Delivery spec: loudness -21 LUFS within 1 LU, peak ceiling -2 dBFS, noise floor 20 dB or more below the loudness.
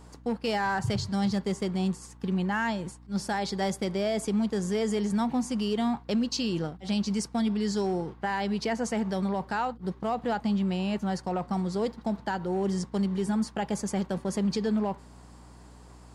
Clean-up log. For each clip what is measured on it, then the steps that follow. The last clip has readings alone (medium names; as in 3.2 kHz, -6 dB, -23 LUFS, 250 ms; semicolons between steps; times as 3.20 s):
clipped samples 0.5%; clipping level -21.0 dBFS; hum 60 Hz; highest harmonic 300 Hz; hum level -49 dBFS; loudness -29.5 LUFS; peak level -21.0 dBFS; loudness target -21.0 LUFS
-> clip repair -21 dBFS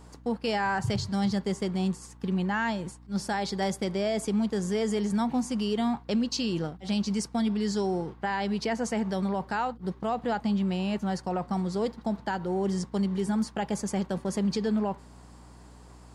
clipped samples 0.0%; hum 60 Hz; highest harmonic 300 Hz; hum level -49 dBFS
-> de-hum 60 Hz, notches 5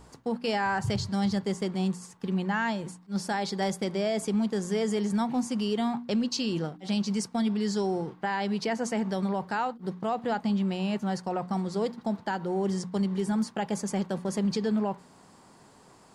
hum not found; loudness -29.5 LUFS; peak level -17.5 dBFS; loudness target -21.0 LUFS
-> trim +8.5 dB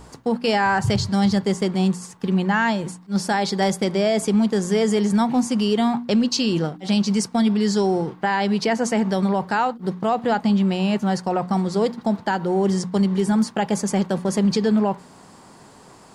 loudness -21.0 LUFS; peak level -9.0 dBFS; noise floor -47 dBFS